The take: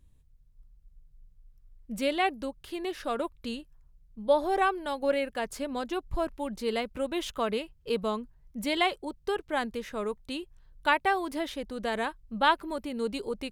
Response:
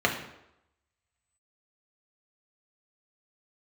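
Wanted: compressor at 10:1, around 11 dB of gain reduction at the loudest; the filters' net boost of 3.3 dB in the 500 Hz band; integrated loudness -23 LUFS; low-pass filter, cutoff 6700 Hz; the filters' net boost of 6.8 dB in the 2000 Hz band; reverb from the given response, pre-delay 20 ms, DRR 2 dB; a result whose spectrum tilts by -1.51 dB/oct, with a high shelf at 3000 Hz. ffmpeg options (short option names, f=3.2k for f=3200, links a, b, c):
-filter_complex "[0:a]lowpass=6.7k,equalizer=f=500:t=o:g=3.5,equalizer=f=2k:t=o:g=6,highshelf=f=3k:g=7,acompressor=threshold=-25dB:ratio=10,asplit=2[a][b];[1:a]atrim=start_sample=2205,adelay=20[c];[b][c]afir=irnorm=-1:irlink=0,volume=-16dB[d];[a][d]amix=inputs=2:normalize=0,volume=6.5dB"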